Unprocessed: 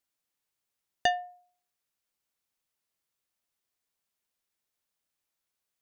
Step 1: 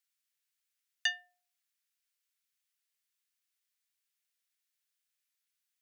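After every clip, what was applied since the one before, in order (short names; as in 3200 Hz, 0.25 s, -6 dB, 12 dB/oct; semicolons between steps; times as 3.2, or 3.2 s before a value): HPF 1500 Hz 24 dB/oct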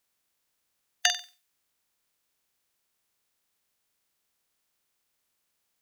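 spectral limiter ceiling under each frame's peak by 23 dB; flutter echo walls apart 8 m, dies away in 0.32 s; gain +7.5 dB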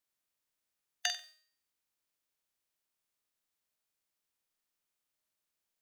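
resonator 310 Hz, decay 0.6 s, mix 70%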